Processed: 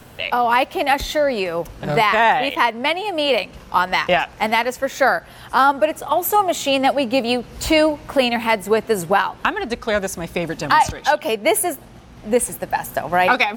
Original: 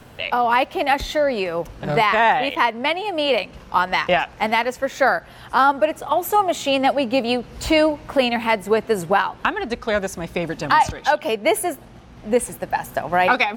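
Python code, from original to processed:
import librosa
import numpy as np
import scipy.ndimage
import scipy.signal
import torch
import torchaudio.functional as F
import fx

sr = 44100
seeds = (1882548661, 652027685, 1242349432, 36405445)

y = fx.high_shelf(x, sr, hz=7100.0, db=7.5)
y = y * 10.0 ** (1.0 / 20.0)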